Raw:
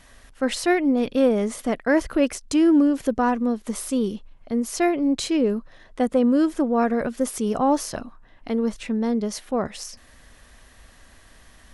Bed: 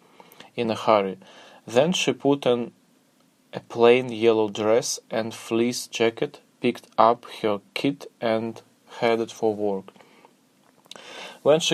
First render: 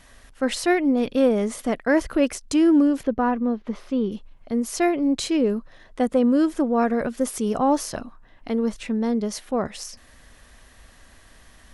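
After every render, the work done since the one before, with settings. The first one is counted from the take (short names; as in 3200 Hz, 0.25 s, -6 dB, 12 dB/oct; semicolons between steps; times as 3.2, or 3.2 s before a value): 3.03–4.12 air absorption 270 m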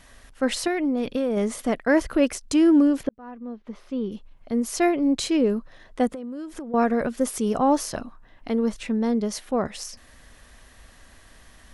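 0.67–1.37 compressor, threshold -20 dBFS; 3.09–4.63 fade in; 6.12–6.74 compressor 12:1, threshold -31 dBFS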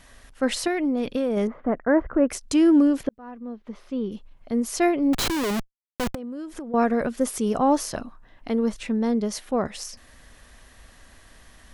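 1.47–2.3 LPF 1600 Hz 24 dB/oct; 5.13–6.15 Schmitt trigger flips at -31 dBFS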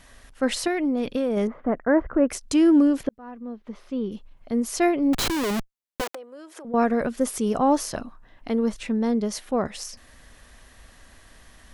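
6.01–6.65 HPF 420 Hz 24 dB/oct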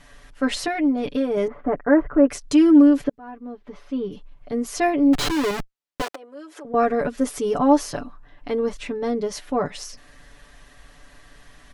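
high shelf 9100 Hz -10.5 dB; comb 6.9 ms, depth 86%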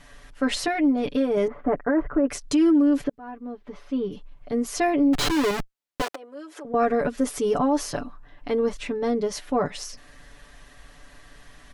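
limiter -13.5 dBFS, peak gain reduction 9.5 dB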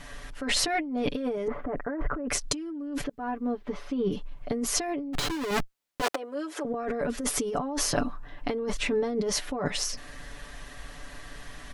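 negative-ratio compressor -29 dBFS, ratio -1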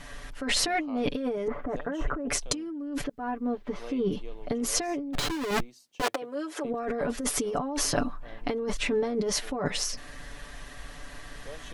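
add bed -27 dB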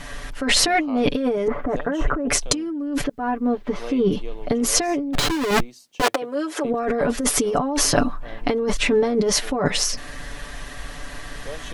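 gain +8.5 dB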